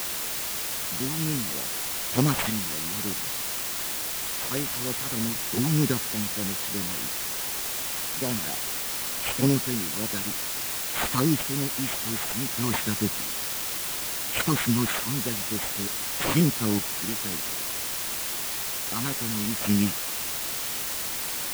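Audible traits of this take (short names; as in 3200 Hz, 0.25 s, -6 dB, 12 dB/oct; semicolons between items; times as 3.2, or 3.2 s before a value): phasing stages 8, 3.3 Hz, lowest notch 460–1900 Hz; aliases and images of a low sample rate 5400 Hz; chopped level 0.56 Hz, depth 60%, duty 40%; a quantiser's noise floor 6-bit, dither triangular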